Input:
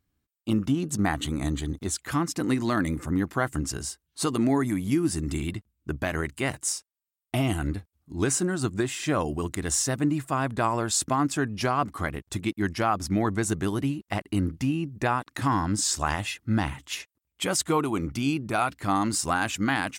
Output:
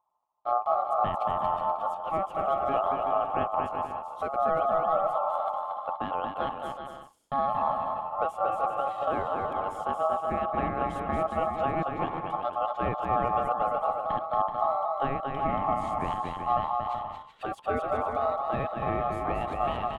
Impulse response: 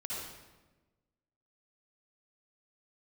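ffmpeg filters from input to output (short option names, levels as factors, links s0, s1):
-af "bass=f=250:g=7,treble=f=4000:g=-4,aeval=exprs='val(0)*sin(2*PI*860*n/s)':c=same,asetrate=49501,aresample=44100,atempo=0.890899,firequalizer=gain_entry='entry(680,0);entry(2100,-15);entry(3200,-9);entry(4700,-26)':delay=0.05:min_phase=1,aecho=1:1:230|379.5|476.7|539.8|580.9:0.631|0.398|0.251|0.158|0.1,volume=0.841"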